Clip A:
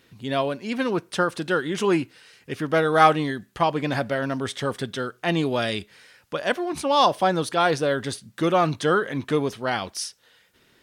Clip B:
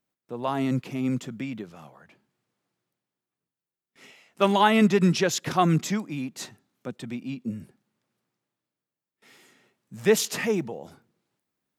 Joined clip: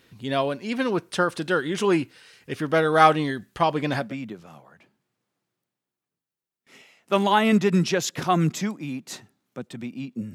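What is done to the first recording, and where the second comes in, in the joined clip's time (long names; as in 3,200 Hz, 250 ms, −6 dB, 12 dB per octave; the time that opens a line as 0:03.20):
clip A
0:04.05: continue with clip B from 0:01.34, crossfade 0.20 s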